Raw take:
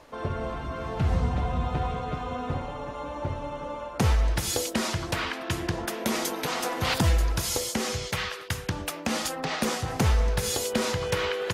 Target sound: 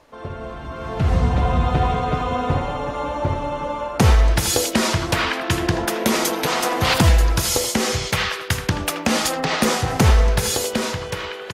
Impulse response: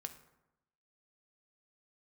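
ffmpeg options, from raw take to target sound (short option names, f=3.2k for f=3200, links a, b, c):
-filter_complex "[0:a]dynaudnorm=f=120:g=17:m=12dB,asplit=2[a][b];[b]adelay=80,highpass=300,lowpass=3.4k,asoftclip=type=hard:threshold=-12dB,volume=-8dB[c];[a][c]amix=inputs=2:normalize=0,volume=-1.5dB"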